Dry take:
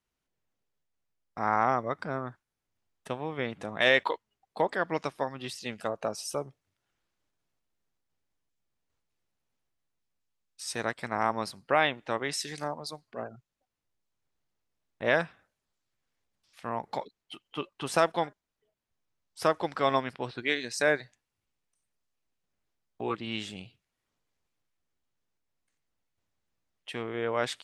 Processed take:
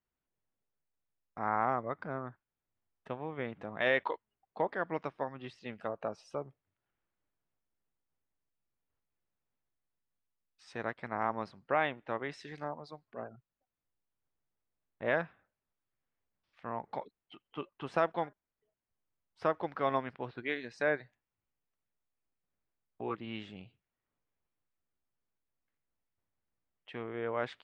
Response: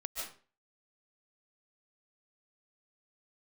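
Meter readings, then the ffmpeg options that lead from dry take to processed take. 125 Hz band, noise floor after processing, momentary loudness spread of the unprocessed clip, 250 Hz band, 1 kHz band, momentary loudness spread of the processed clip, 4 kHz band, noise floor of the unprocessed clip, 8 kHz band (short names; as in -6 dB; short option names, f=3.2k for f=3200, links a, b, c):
-5.0 dB, under -85 dBFS, 15 LU, -5.0 dB, -5.0 dB, 14 LU, -13.5 dB, under -85 dBFS, under -25 dB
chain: -af "lowpass=2.3k,volume=-5dB"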